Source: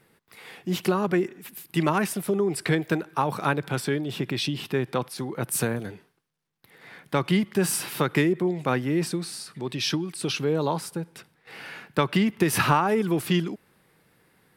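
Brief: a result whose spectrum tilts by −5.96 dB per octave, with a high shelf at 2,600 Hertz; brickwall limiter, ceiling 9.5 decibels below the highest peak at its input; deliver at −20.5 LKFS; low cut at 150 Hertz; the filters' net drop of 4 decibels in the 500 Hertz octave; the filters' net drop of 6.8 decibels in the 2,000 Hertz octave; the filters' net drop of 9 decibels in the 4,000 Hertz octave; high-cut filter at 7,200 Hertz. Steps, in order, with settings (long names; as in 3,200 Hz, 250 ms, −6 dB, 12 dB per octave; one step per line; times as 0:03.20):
high-pass filter 150 Hz
low-pass filter 7,200 Hz
parametric band 500 Hz −5 dB
parametric band 2,000 Hz −5.5 dB
high-shelf EQ 2,600 Hz −4 dB
parametric band 4,000 Hz −6 dB
level +10.5 dB
brickwall limiter −8.5 dBFS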